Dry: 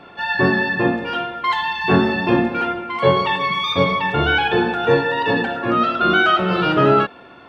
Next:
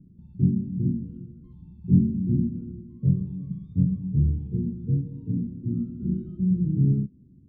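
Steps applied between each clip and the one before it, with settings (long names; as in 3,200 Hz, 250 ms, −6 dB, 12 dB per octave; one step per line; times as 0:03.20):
inverse Chebyshev low-pass filter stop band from 660 Hz, stop band 60 dB
level +3.5 dB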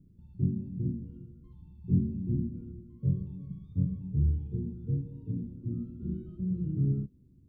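parametric band 200 Hz −9.5 dB 1.7 octaves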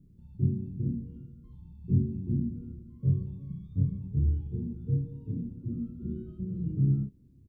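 double-tracking delay 30 ms −4.5 dB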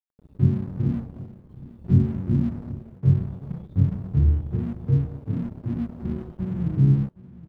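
dead-zone distortion −49 dBFS
repeating echo 768 ms, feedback 47%, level −19 dB
level +8 dB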